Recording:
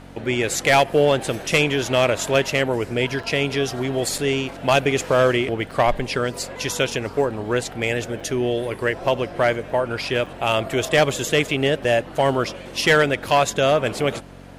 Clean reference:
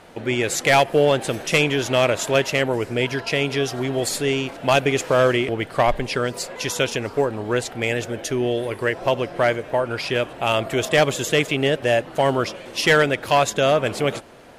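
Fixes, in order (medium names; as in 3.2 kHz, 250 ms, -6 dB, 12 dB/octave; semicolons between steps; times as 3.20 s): de-hum 46.4 Hz, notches 6; interpolate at 3.23/4.18/5.71/8.20/10.26/11.84 s, 4.6 ms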